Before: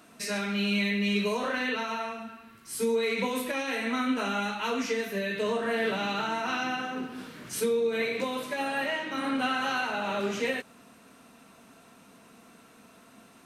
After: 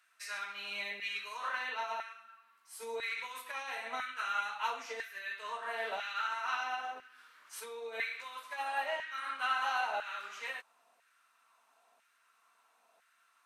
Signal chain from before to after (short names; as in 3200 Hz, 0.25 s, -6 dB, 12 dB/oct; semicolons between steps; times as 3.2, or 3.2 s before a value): LFO high-pass saw down 1 Hz 680–1700 Hz; upward expander 1.5:1, over -42 dBFS; gain -6 dB